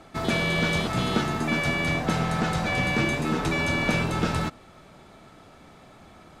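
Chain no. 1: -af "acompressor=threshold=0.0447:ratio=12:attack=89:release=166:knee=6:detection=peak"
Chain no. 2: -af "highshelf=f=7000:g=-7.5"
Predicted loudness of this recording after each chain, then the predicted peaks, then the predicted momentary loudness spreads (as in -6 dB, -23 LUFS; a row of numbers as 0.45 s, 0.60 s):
-27.5 LUFS, -25.5 LUFS; -12.0 dBFS, -11.0 dBFS; 2 LU, 2 LU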